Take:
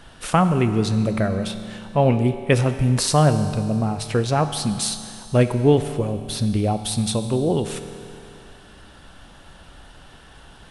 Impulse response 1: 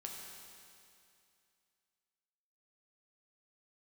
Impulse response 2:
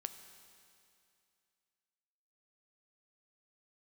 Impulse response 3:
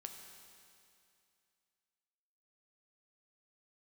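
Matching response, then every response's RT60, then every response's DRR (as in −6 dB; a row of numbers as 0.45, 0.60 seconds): 2; 2.5, 2.5, 2.5 seconds; −1.0, 8.5, 3.5 decibels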